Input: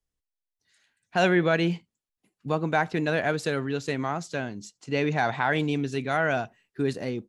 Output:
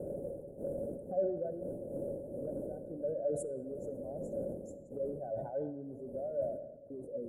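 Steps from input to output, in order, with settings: spectral contrast enhancement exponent 1.9; wind noise 330 Hz -26 dBFS; Doppler pass-by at 1.98 s, 14 m/s, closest 9.7 m; gate -51 dBFS, range -11 dB; elliptic band-stop 550–9600 Hz, stop band 40 dB; RIAA curve recording; compression 16:1, threshold -47 dBFS, peak gain reduction 27 dB; small resonant body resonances 560/1500 Hz, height 16 dB, ringing for 70 ms; on a send at -11.5 dB: reverberation RT60 1.6 s, pre-delay 19 ms; on the sum: decay stretcher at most 61 dB/s; trim +5.5 dB

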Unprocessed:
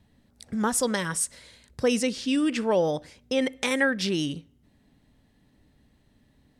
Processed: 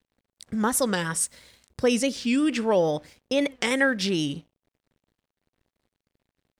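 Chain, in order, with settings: crossover distortion -57 dBFS; warped record 45 rpm, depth 160 cents; trim +1.5 dB

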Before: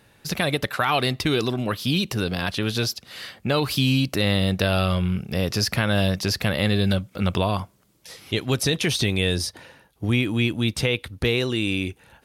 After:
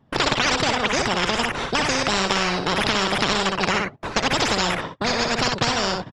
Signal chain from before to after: rattle on loud lows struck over -24 dBFS, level -25 dBFS; gate -47 dBFS, range -27 dB; peaking EQ 67 Hz +11 dB 1.2 oct; band-stop 4.3 kHz, Q 22; in parallel at -4 dB: sample-and-hold 21×; on the sum: flange 1.4 Hz, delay 1.9 ms, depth 2.8 ms, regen +44%; on a send: delay 123 ms -7.5 dB; on the sum: speed mistake 7.5 ips tape played at 15 ips; tape spacing loss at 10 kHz 37 dB; spectrum-flattening compressor 4:1; trim +7 dB

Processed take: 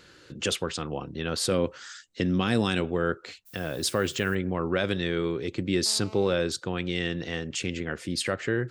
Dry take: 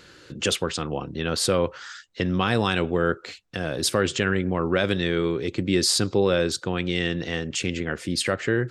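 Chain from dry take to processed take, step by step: 1.51–2.81 s: graphic EQ 250/1000/8000 Hz +6/-4/+7 dB; 3.45–4.34 s: added noise violet -48 dBFS; 5.86–6.33 s: mobile phone buzz -43 dBFS; trim -4 dB

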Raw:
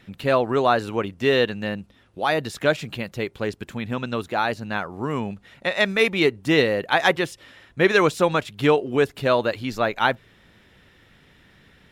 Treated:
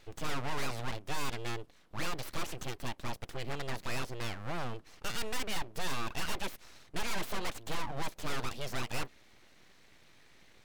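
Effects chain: full-wave rectifier; wide varispeed 1.12×; saturation -21.5 dBFS, distortion -7 dB; trim -4.5 dB

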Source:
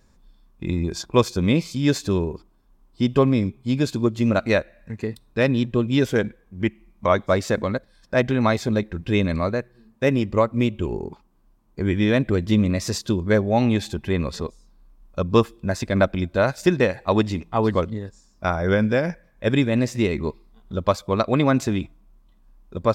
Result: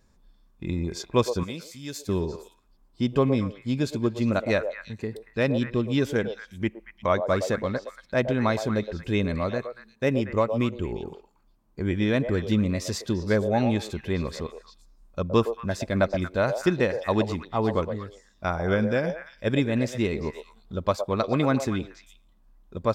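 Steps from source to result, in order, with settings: 1.43–2.09 s: pre-emphasis filter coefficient 0.8; repeats whose band climbs or falls 116 ms, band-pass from 590 Hz, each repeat 1.4 oct, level -5 dB; trim -4.5 dB

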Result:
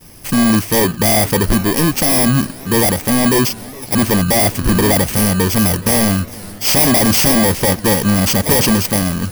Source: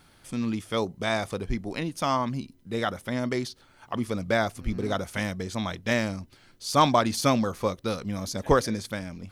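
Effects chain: bit-reversed sample order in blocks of 32 samples; in parallel at -8 dB: sine folder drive 18 dB, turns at -8.5 dBFS; on the sum: expander -39 dBFS; modulated delay 413 ms, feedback 72%, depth 194 cents, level -21 dB; trim +5.5 dB

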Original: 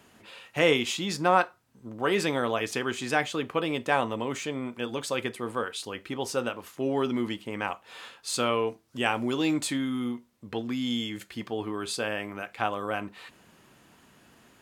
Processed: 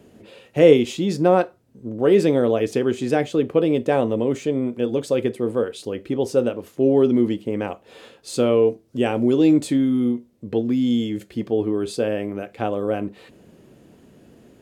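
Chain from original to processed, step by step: resonant low shelf 710 Hz +11.5 dB, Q 1.5; trim -2 dB

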